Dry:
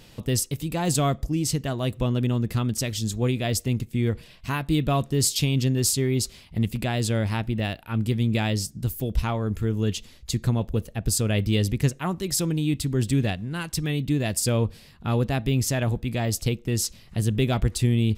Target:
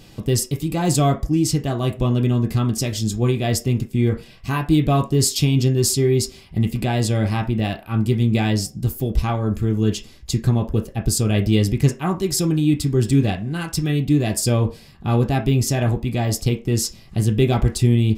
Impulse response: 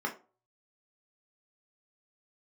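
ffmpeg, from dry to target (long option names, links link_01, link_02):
-filter_complex "[0:a]asplit=2[link_01][link_02];[1:a]atrim=start_sample=2205,lowshelf=frequency=230:gain=-11[link_03];[link_02][link_03]afir=irnorm=-1:irlink=0,volume=-7.5dB[link_04];[link_01][link_04]amix=inputs=2:normalize=0,volume=4dB"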